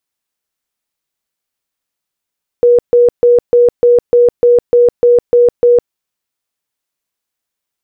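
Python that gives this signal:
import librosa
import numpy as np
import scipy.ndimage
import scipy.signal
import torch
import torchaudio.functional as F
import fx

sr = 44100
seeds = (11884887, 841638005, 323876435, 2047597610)

y = fx.tone_burst(sr, hz=482.0, cycles=76, every_s=0.3, bursts=11, level_db=-4.0)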